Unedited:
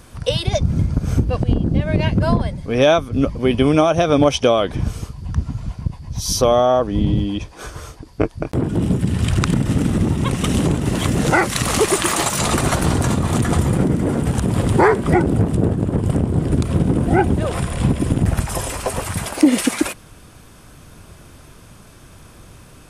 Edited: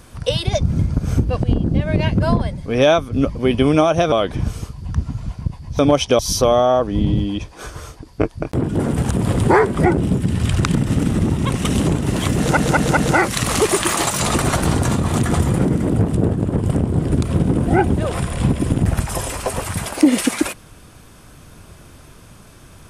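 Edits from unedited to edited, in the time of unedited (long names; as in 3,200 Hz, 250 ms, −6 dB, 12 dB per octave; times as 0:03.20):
0:04.12–0:04.52: move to 0:06.19
0:11.16: stutter 0.20 s, 4 plays
0:14.08–0:15.29: move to 0:08.79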